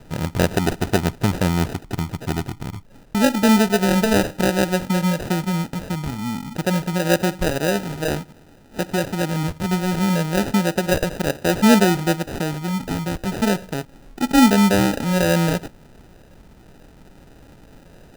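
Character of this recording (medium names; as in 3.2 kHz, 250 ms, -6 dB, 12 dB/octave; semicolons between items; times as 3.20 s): phasing stages 6, 0.29 Hz, lowest notch 640–4300 Hz; aliases and images of a low sample rate 1.1 kHz, jitter 0%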